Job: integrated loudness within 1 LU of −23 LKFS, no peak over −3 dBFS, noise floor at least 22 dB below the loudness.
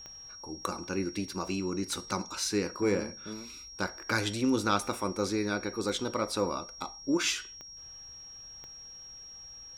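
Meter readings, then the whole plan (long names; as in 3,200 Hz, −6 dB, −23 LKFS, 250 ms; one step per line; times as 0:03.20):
number of clicks 4; interfering tone 5,600 Hz; level of the tone −45 dBFS; integrated loudness −32.0 LKFS; sample peak −13.0 dBFS; target loudness −23.0 LKFS
→ click removal
notch filter 5,600 Hz, Q 30
level +9 dB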